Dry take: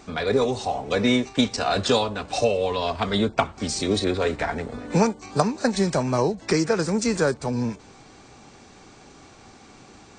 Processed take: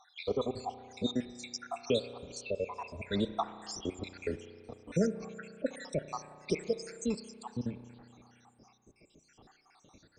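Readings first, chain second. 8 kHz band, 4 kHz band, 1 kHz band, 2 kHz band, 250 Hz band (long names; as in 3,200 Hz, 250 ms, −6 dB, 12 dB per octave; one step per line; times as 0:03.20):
−14.0 dB, −14.5 dB, −15.0 dB, −17.0 dB, −12.5 dB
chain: time-frequency cells dropped at random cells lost 77%
spring reverb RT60 2.3 s, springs 33 ms, chirp 40 ms, DRR 12 dB
level −8 dB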